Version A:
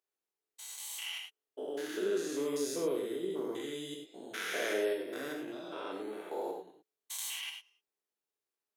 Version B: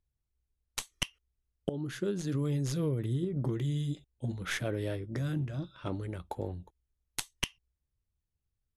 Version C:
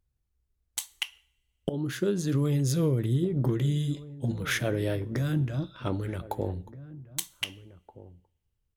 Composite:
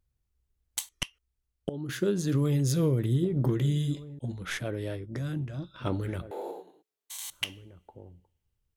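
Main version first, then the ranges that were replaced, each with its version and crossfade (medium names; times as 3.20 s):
C
0.89–1.89 s: from B
4.19–5.74 s: from B
6.31–7.30 s: from A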